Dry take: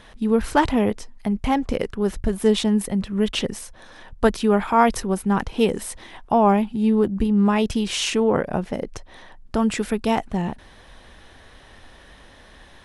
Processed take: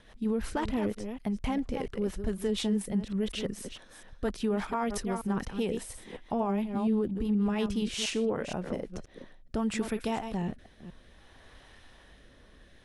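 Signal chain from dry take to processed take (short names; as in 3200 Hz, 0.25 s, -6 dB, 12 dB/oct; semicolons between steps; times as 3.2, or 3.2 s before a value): reverse delay 0.237 s, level -10.5 dB; rotary speaker horn 6 Hz, later 0.6 Hz, at 7.6; limiter -14.5 dBFS, peak gain reduction 10 dB; gain -6.5 dB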